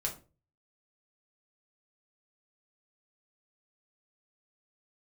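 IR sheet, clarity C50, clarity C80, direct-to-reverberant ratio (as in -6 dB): 11.5 dB, 17.0 dB, -1.5 dB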